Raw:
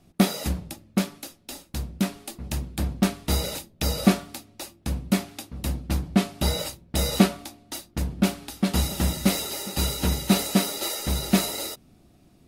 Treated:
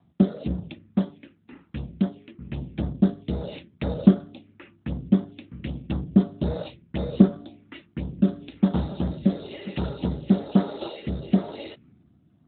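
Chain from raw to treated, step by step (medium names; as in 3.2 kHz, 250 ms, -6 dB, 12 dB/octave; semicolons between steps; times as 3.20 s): rotary cabinet horn 1 Hz; touch-sensitive phaser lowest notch 440 Hz, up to 2.5 kHz, full sweep at -24 dBFS; trim +3.5 dB; AMR-NB 12.2 kbps 8 kHz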